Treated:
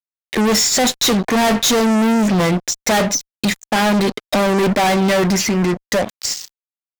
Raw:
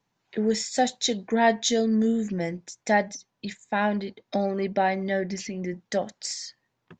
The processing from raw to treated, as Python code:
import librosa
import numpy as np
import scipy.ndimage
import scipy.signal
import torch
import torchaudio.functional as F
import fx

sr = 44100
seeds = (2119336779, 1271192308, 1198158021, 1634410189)

y = fx.fade_out_tail(x, sr, length_s=2.13)
y = fx.fuzz(y, sr, gain_db=39.0, gate_db=-46.0)